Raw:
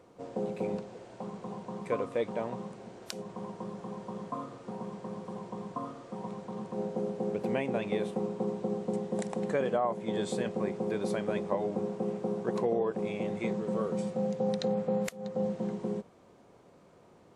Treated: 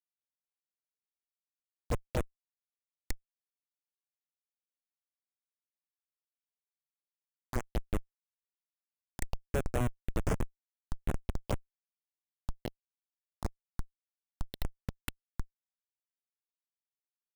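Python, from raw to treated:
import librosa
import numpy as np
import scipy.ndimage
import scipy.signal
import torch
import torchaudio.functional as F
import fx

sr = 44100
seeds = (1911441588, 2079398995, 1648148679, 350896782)

y = fx.riaa(x, sr, side='recording')
y = fx.dereverb_blind(y, sr, rt60_s=1.4)
y = fx.peak_eq(y, sr, hz=3300.0, db=2.5, octaves=1.0)
y = fx.schmitt(y, sr, flips_db=-25.5)
y = fx.env_phaser(y, sr, low_hz=330.0, high_hz=4700.0, full_db=-39.0)
y = fx.record_warp(y, sr, rpm=45.0, depth_cents=250.0)
y = y * librosa.db_to_amplitude(11.5)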